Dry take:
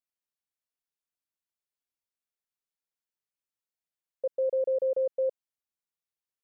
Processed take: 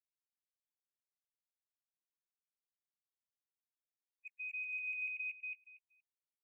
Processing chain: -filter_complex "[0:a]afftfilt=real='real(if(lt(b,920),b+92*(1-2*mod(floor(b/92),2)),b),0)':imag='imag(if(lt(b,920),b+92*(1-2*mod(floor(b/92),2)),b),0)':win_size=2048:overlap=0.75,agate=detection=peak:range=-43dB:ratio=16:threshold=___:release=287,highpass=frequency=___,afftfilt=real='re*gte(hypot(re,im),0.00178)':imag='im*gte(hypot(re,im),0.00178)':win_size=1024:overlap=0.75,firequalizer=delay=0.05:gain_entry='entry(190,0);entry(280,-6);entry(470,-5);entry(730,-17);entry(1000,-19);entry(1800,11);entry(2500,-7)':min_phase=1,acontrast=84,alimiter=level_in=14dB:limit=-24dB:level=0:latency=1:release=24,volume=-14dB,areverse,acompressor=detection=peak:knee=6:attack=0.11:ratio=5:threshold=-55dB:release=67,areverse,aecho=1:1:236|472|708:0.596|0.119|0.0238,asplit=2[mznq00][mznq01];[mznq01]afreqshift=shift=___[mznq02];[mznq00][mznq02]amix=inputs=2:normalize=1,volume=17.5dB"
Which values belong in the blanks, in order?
-25dB, 610, 0.38